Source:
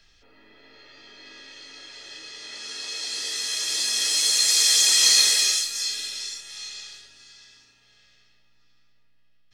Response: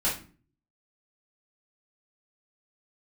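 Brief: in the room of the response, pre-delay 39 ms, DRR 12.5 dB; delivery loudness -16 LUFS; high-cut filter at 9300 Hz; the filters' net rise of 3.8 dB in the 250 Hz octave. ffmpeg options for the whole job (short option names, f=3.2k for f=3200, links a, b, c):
-filter_complex "[0:a]lowpass=9.3k,equalizer=f=250:t=o:g=5,asplit=2[a][b];[1:a]atrim=start_sample=2205,adelay=39[c];[b][c]afir=irnorm=-1:irlink=0,volume=-22dB[d];[a][d]amix=inputs=2:normalize=0,volume=3.5dB"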